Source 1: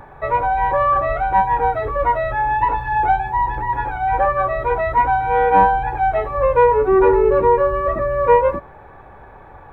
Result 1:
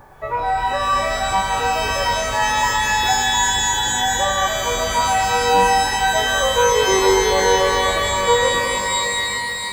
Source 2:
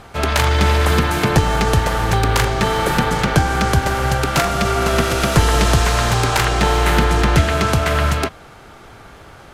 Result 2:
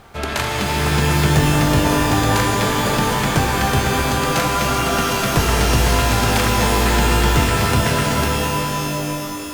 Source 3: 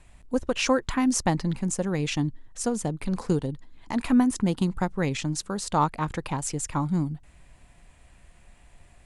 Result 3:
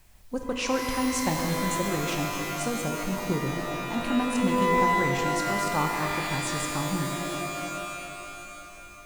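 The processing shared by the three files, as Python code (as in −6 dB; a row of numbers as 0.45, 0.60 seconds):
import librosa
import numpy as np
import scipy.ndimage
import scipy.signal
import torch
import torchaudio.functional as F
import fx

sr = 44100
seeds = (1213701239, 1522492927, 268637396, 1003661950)

y = fx.quant_dither(x, sr, seeds[0], bits=10, dither='triangular')
y = fx.rev_shimmer(y, sr, seeds[1], rt60_s=3.2, semitones=12, shimmer_db=-2, drr_db=2.0)
y = y * 10.0 ** (-5.0 / 20.0)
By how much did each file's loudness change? 0.0, −0.5, −0.5 LU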